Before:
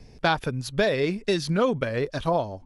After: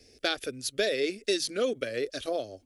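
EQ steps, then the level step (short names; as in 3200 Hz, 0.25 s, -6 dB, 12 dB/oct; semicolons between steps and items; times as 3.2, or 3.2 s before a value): HPF 200 Hz 6 dB/oct; high shelf 4600 Hz +10 dB; fixed phaser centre 390 Hz, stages 4; -2.5 dB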